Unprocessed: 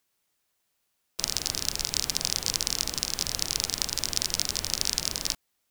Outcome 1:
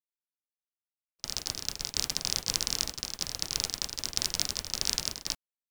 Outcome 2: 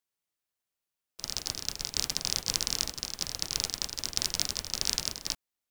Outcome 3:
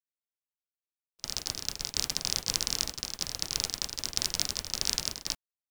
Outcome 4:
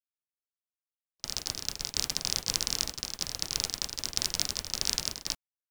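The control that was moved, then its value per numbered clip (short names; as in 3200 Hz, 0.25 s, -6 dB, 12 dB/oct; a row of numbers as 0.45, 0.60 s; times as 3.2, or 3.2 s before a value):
gate, range: -44, -13, -31, -60 dB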